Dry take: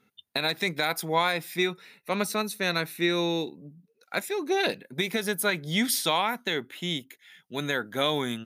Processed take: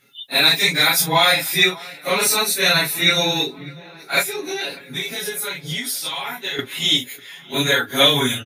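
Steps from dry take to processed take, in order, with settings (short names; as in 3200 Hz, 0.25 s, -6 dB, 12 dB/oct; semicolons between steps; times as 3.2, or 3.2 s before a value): phase scrambler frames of 0.1 s; high shelf 2100 Hz +11.5 dB; comb 7.2 ms, depth 82%; 4.22–6.59 compressor 6:1, threshold -29 dBFS, peak gain reduction 16.5 dB; dark delay 0.595 s, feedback 61%, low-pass 2900 Hz, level -22 dB; gain +4.5 dB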